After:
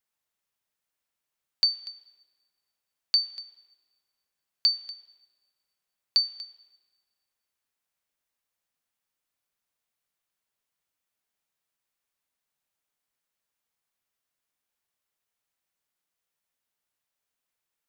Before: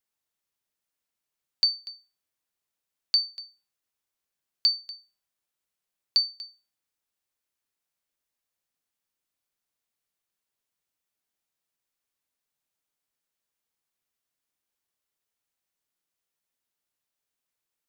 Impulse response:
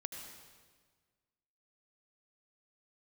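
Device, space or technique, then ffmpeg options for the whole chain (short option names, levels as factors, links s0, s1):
filtered reverb send: -filter_complex "[0:a]asplit=2[s0][s1];[s1]highpass=f=310:w=0.5412,highpass=f=310:w=1.3066,lowpass=3500[s2];[1:a]atrim=start_sample=2205[s3];[s2][s3]afir=irnorm=-1:irlink=0,volume=0.398[s4];[s0][s4]amix=inputs=2:normalize=0"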